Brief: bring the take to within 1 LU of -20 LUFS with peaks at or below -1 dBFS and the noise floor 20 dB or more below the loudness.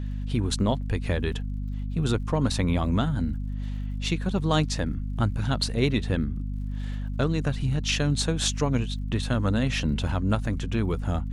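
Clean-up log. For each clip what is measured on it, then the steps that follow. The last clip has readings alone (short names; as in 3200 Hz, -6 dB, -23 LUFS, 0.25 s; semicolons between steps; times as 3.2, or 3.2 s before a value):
ticks 55/s; hum 50 Hz; harmonics up to 250 Hz; hum level -28 dBFS; loudness -27.0 LUFS; peak -9.0 dBFS; loudness target -20.0 LUFS
-> de-click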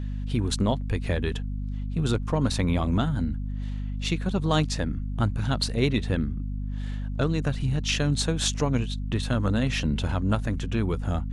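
ticks 0.088/s; hum 50 Hz; harmonics up to 250 Hz; hum level -28 dBFS
-> de-hum 50 Hz, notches 5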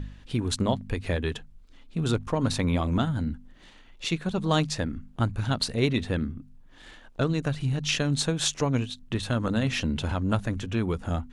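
hum none; loudness -28.0 LUFS; peak -10.5 dBFS; loudness target -20.0 LUFS
-> gain +8 dB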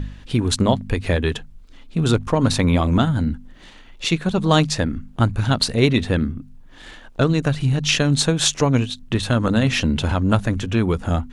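loudness -20.0 LUFS; peak -2.5 dBFS; noise floor -44 dBFS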